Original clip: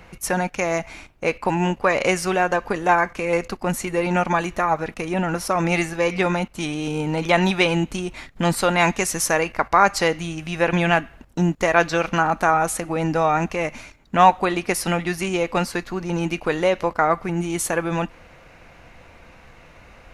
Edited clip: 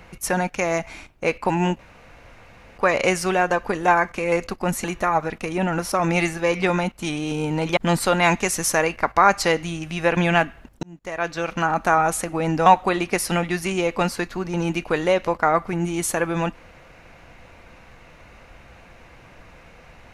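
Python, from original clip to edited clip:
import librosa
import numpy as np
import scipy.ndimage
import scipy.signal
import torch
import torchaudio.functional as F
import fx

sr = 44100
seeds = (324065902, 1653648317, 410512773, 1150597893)

y = fx.edit(x, sr, fx.insert_room_tone(at_s=1.79, length_s=0.99),
    fx.cut(start_s=3.85, length_s=0.55),
    fx.cut(start_s=7.33, length_s=1.0),
    fx.fade_in_span(start_s=11.39, length_s=1.06),
    fx.cut(start_s=13.22, length_s=1.0), tone=tone)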